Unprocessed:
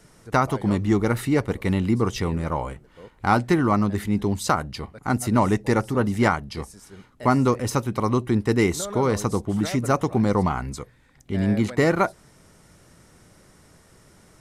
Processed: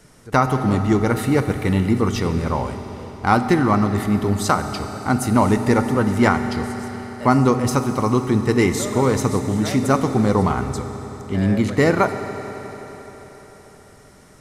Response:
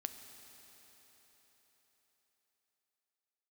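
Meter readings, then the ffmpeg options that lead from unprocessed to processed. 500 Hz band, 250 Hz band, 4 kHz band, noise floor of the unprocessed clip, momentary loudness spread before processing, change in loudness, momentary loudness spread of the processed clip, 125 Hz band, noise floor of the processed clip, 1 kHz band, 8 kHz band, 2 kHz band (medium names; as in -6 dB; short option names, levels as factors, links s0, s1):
+4.0 dB, +4.0 dB, +3.5 dB, -55 dBFS, 9 LU, +3.5 dB, 13 LU, +4.0 dB, -47 dBFS, +4.0 dB, +3.5 dB, +3.5 dB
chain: -filter_complex "[1:a]atrim=start_sample=2205[s0];[0:a][s0]afir=irnorm=-1:irlink=0,volume=1.88"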